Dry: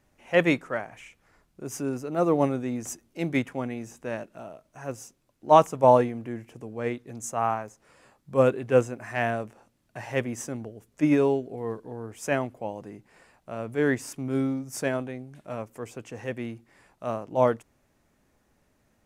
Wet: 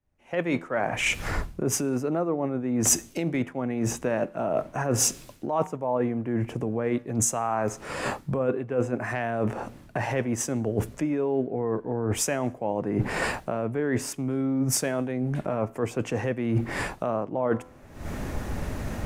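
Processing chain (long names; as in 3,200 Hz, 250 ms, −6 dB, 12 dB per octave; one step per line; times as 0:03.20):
camcorder AGC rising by 50 dB per second
tuned comb filter 84 Hz, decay 0.68 s, harmonics all, mix 30%
in parallel at −2 dB: brickwall limiter −14.5 dBFS, peak gain reduction 10.5 dB
on the sum: high-shelf EQ 2,800 Hz −7.5 dB
reversed playback
downward compressor 16 to 1, threshold −28 dBFS, peak gain reduction 18 dB
reversed playback
multiband upward and downward expander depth 70%
level +5.5 dB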